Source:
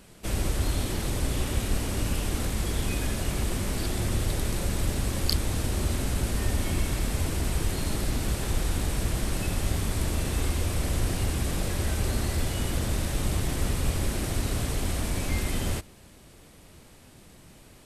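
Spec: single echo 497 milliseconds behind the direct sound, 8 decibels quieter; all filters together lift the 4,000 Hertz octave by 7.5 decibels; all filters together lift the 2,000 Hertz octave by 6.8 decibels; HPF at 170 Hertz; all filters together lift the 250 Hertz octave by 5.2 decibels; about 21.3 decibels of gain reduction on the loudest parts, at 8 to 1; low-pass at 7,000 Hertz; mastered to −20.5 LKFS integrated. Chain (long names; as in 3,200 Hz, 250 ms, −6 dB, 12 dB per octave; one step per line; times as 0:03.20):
high-pass filter 170 Hz
low-pass filter 7,000 Hz
parametric band 250 Hz +8 dB
parametric band 2,000 Hz +6 dB
parametric band 4,000 Hz +8 dB
downward compressor 8 to 1, threshold −41 dBFS
single-tap delay 497 ms −8 dB
level +22 dB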